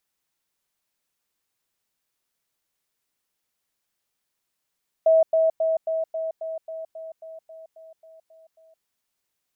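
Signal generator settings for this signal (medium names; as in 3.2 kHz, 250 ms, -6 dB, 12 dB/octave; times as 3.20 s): level ladder 646 Hz -13 dBFS, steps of -3 dB, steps 14, 0.17 s 0.10 s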